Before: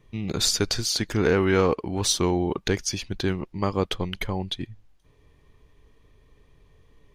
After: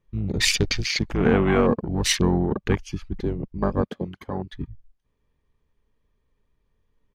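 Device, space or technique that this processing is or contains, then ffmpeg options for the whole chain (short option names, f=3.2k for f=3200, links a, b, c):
octave pedal: -filter_complex "[0:a]asplit=3[a][b][c];[a]afade=t=out:st=3.81:d=0.02[d];[b]highpass=230,afade=t=in:st=3.81:d=0.02,afade=t=out:st=4.52:d=0.02[e];[c]afade=t=in:st=4.52:d=0.02[f];[d][e][f]amix=inputs=3:normalize=0,afwtdn=0.0316,asplit=2[g][h];[h]asetrate=22050,aresample=44100,atempo=2,volume=-1dB[i];[g][i]amix=inputs=2:normalize=0"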